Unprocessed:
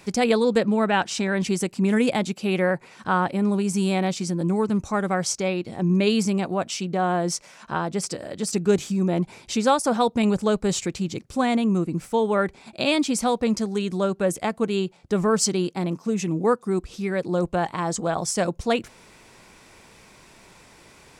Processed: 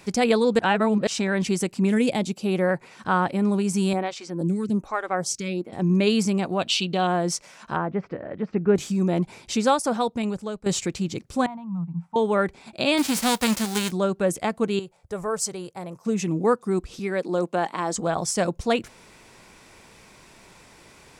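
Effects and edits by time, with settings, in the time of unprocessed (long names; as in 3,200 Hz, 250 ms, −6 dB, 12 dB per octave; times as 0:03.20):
0:00.59–0:01.07: reverse
0:01.88–0:02.68: parametric band 950 Hz → 2,700 Hz −7 dB 1.3 octaves
0:03.93–0:05.73: phaser with staggered stages 1.2 Hz
0:06.59–0:07.07: flat-topped bell 3,400 Hz +12 dB 1 octave
0:07.76–0:08.76: low-pass filter 2,100 Hz 24 dB per octave
0:09.60–0:10.66: fade out, to −14.5 dB
0:11.46–0:12.16: pair of resonant band-passes 390 Hz, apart 2.4 octaves
0:12.97–0:13.90: spectral envelope flattened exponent 0.3
0:14.79–0:16.05: drawn EQ curve 100 Hz 0 dB, 190 Hz −13 dB, 300 Hz −16 dB, 510 Hz −2 dB, 2,000 Hz −7 dB, 2,900 Hz −11 dB, 4,300 Hz −10 dB, 10,000 Hz 0 dB
0:16.99–0:17.95: high-pass filter 200 Hz 24 dB per octave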